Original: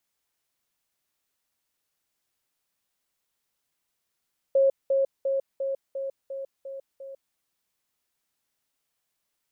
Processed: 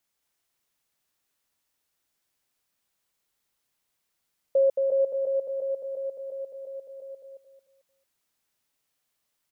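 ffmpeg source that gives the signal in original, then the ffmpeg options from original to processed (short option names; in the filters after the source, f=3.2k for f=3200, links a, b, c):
-f lavfi -i "aevalsrc='pow(10,(-16.5-3*floor(t/0.35))/20)*sin(2*PI*543*t)*clip(min(mod(t,0.35),0.15-mod(t,0.35))/0.005,0,1)':d=2.8:s=44100"
-af "aecho=1:1:222|444|666|888:0.596|0.191|0.061|0.0195"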